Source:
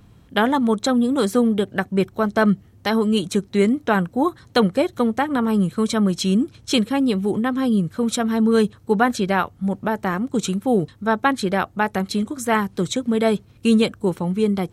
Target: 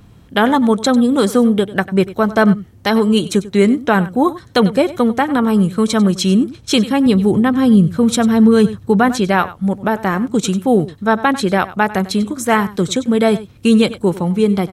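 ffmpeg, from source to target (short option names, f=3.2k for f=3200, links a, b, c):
-filter_complex "[0:a]asettb=1/sr,asplit=3[a][b][c];[a]atrim=end=7.064[d];[b]atrim=start=7.06:end=9.09,asetpts=PTS-STARTPTS,afade=t=in:d=0.004:c=qsin,afade=t=out:st=2.026:d=0.004:c=qsin,equalizer=f=95:t=o:w=2:g=8.5[e];[c]atrim=start=9.086[f];[d][e]acrossfade=d=0.004:c1=hsin:c2=qsin[g];[g][f]acrossfade=d=0.004:c1=qsin:c2=hsin,aecho=1:1:96:0.141,alimiter=level_in=6.5dB:limit=-1dB:release=50:level=0:latency=1,volume=-1dB"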